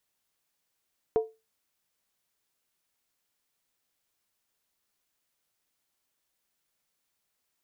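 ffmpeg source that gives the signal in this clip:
ffmpeg -f lavfi -i "aevalsrc='0.133*pow(10,-3*t/0.25)*sin(2*PI*443*t)+0.0376*pow(10,-3*t/0.198)*sin(2*PI*706.1*t)+0.0106*pow(10,-3*t/0.171)*sin(2*PI*946.2*t)+0.00299*pow(10,-3*t/0.165)*sin(2*PI*1017.1*t)+0.000841*pow(10,-3*t/0.153)*sin(2*PI*1175.3*t)':duration=0.63:sample_rate=44100" out.wav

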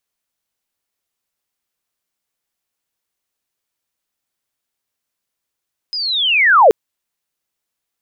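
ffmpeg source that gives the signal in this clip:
ffmpeg -f lavfi -i "aevalsrc='pow(10,(-19.5+16*t/0.78)/20)*sin(2*PI*(5100*t-4720*t*t/(2*0.78)))':duration=0.78:sample_rate=44100" out.wav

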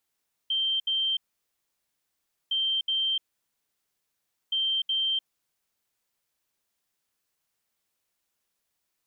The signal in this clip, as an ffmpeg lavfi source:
ffmpeg -f lavfi -i "aevalsrc='0.0668*sin(2*PI*3140*t)*clip(min(mod(mod(t,2.01),0.37),0.3-mod(mod(t,2.01),0.37))/0.005,0,1)*lt(mod(t,2.01),0.74)':duration=6.03:sample_rate=44100" out.wav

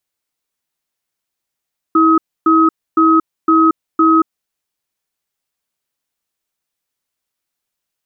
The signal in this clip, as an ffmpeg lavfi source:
ffmpeg -f lavfi -i "aevalsrc='0.316*(sin(2*PI*323*t)+sin(2*PI*1270*t))*clip(min(mod(t,0.51),0.23-mod(t,0.51))/0.005,0,1)':duration=2.44:sample_rate=44100" out.wav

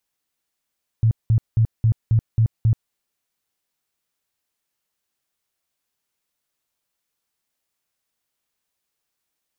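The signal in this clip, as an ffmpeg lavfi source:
ffmpeg -f lavfi -i "aevalsrc='0.237*sin(2*PI*112*mod(t,0.27))*lt(mod(t,0.27),9/112)':duration=1.89:sample_rate=44100" out.wav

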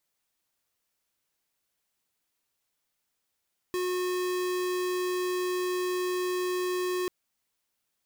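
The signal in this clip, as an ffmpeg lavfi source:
ffmpeg -f lavfi -i "aevalsrc='0.0335*(2*lt(mod(363*t,1),0.5)-1)':duration=3.34:sample_rate=44100" out.wav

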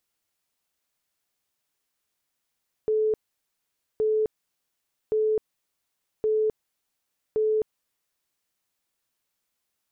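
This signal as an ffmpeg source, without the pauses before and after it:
ffmpeg -f lavfi -i "aevalsrc='0.1*sin(2*PI*433*mod(t,1.12))*lt(mod(t,1.12),112/433)':duration=5.6:sample_rate=44100" out.wav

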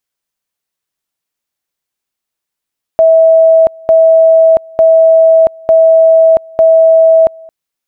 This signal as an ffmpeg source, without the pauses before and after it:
ffmpeg -f lavfi -i "aevalsrc='pow(10,(-2.5-27*gte(mod(t,0.9),0.68))/20)*sin(2*PI*650*t)':duration=4.5:sample_rate=44100" out.wav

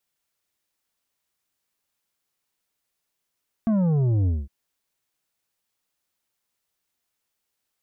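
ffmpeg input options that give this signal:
ffmpeg -f lavfi -i "aevalsrc='0.112*clip((0.81-t)/0.21,0,1)*tanh(2.51*sin(2*PI*230*0.81/log(65/230)*(exp(log(65/230)*t/0.81)-1)))/tanh(2.51)':duration=0.81:sample_rate=44100" out.wav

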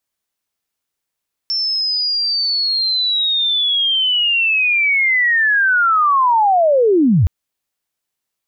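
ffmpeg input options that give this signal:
ffmpeg -f lavfi -i "aevalsrc='pow(10,(-16+7*t/5.77)/20)*sin(2*PI*(5400*t-5331*t*t/(2*5.77)))':duration=5.77:sample_rate=44100" out.wav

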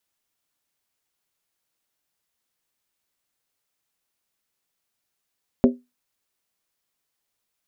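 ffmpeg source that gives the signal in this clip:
ffmpeg -f lavfi -i "aevalsrc='0.376*pow(10,-3*t/0.22)*sin(2*PI*247*t)+0.211*pow(10,-3*t/0.174)*sin(2*PI*393.7*t)+0.119*pow(10,-3*t/0.151)*sin(2*PI*527.6*t)+0.0668*pow(10,-3*t/0.145)*sin(2*PI*567.1*t)+0.0376*pow(10,-3*t/0.135)*sin(2*PI*655.3*t)':duration=0.63:sample_rate=44100" out.wav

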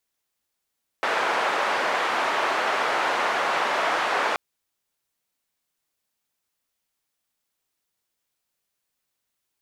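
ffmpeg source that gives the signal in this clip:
ffmpeg -f lavfi -i "anoisesrc=color=white:duration=3.33:sample_rate=44100:seed=1,highpass=frequency=590,lowpass=frequency=1300,volume=-4.9dB" out.wav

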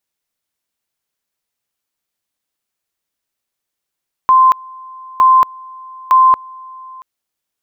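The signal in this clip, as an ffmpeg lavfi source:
ffmpeg -f lavfi -i "aevalsrc='pow(10,(-5-25.5*gte(mod(t,0.91),0.23))/20)*sin(2*PI*1040*t)':duration=2.73:sample_rate=44100" out.wav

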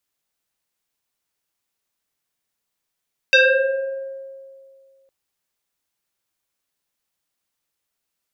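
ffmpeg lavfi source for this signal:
ffmpeg -f lavfi -i "aevalsrc='0.376*pow(10,-3*t/2.2)*sin(2*PI*540*t+3.3*pow(10,-3*t/1.47)*sin(2*PI*1.96*540*t))':duration=1.76:sample_rate=44100" out.wav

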